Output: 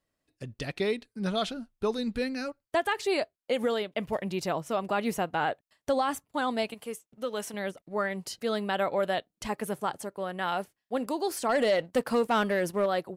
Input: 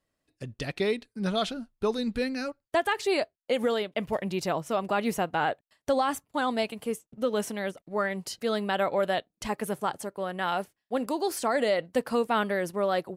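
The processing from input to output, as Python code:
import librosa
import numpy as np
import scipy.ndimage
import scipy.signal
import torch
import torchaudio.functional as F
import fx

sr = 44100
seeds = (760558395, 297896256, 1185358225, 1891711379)

y = fx.low_shelf(x, sr, hz=460.0, db=-9.0, at=(6.74, 7.54))
y = fx.leveller(y, sr, passes=1, at=(11.49, 12.86))
y = F.gain(torch.from_numpy(y), -1.5).numpy()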